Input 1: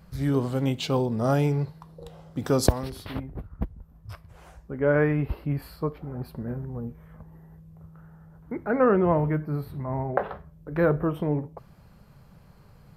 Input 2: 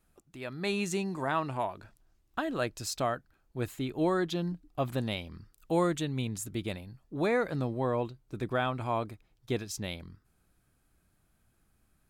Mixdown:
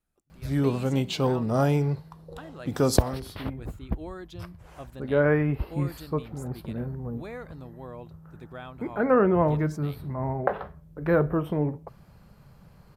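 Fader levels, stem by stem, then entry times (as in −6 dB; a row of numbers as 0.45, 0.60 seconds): 0.0, −11.5 decibels; 0.30, 0.00 seconds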